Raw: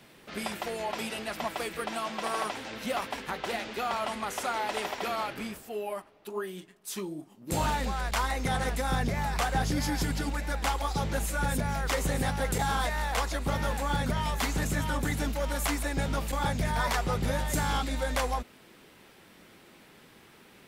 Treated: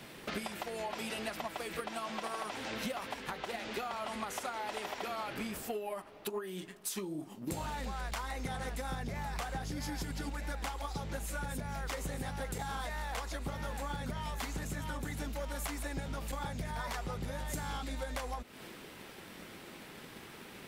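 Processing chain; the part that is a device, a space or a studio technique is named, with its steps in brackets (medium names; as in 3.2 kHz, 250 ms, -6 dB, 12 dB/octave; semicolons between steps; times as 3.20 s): drum-bus smash (transient shaper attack +7 dB, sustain +3 dB; compression 10:1, threshold -39 dBFS, peak gain reduction 19 dB; saturation -31.5 dBFS, distortion -22 dB); trim +4.5 dB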